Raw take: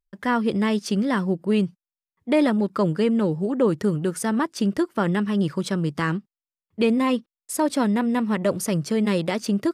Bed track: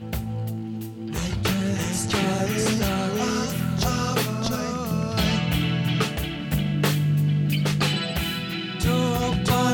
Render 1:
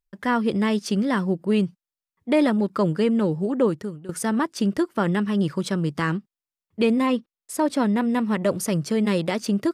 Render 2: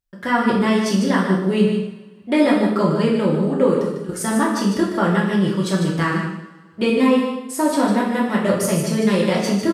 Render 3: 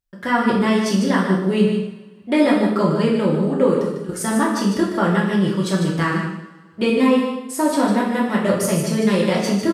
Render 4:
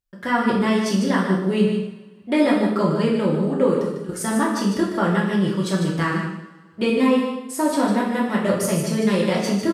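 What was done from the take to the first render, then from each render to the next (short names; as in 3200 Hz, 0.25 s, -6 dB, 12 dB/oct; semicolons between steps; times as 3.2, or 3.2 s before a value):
3.64–4.09 fade out quadratic, to -16.5 dB; 7.06–7.98 high shelf 4400 Hz -5 dB
on a send: echo 0.15 s -7.5 dB; on the sum: two-slope reverb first 0.65 s, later 1.8 s, from -17 dB, DRR -3.5 dB
nothing audible
gain -2 dB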